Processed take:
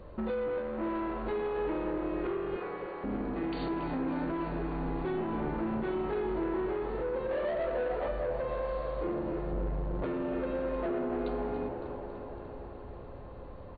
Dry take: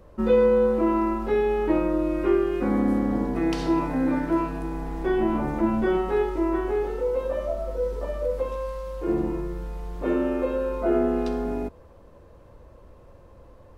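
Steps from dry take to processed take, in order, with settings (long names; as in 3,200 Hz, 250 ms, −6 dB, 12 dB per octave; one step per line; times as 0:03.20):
downward compressor 4 to 1, threshold −31 dBFS, peak gain reduction 13.5 dB
0:02.56–0:03.04: high-pass filter 790 Hz 24 dB per octave
echo with shifted repeats 279 ms, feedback 57%, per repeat +77 Hz, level −13 dB
0:07.31–0:08.08: mid-hump overdrive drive 17 dB, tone 1,300 Hz, clips at −22 dBFS
0:09.51–0:10.05: tilt shelving filter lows +6 dB, about 1,100 Hz
soft clipping −31 dBFS, distortion −13 dB
linear-phase brick-wall low-pass 4,600 Hz
delay with a low-pass on its return 297 ms, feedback 75%, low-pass 2,700 Hz, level −10 dB
level +2 dB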